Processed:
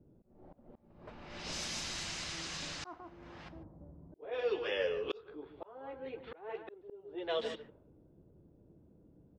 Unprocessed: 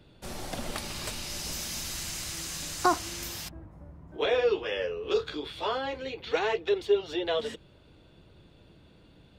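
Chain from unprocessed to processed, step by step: bass shelf 150 Hz -10 dB; delay 146 ms -13.5 dB; slow attack 773 ms; level-controlled noise filter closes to 310 Hz, open at -31 dBFS; distance through air 67 m

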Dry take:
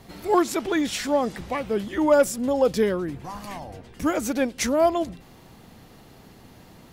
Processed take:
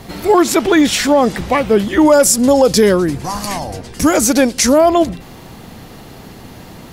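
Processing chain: 2.05–4.78 s: high-order bell 7.1 kHz +8 dB; loudness maximiser +14.5 dB; trim -1 dB

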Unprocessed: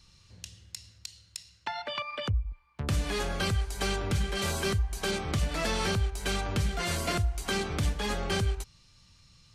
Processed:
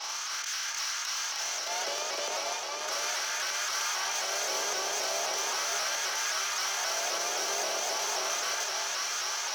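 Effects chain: spectral levelling over time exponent 0.2; expander -16 dBFS; high-pass 210 Hz 24 dB/octave; compression, threshold -36 dBFS, peak gain reduction 12 dB; peak limiter -31 dBFS, peak gain reduction 10 dB; resonant low-pass 6 kHz, resonance Q 9; saturation -36 dBFS, distortion -12 dB; LFO high-pass sine 0.37 Hz 500–1500 Hz; Chebyshev shaper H 4 -18 dB, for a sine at -7 dBFS; on a send: echo that smears into a reverb 690 ms, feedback 46%, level -3 dB; on the sum: vibrato with a chosen wave saw up 3.8 Hz, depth 100 cents; trim +6 dB

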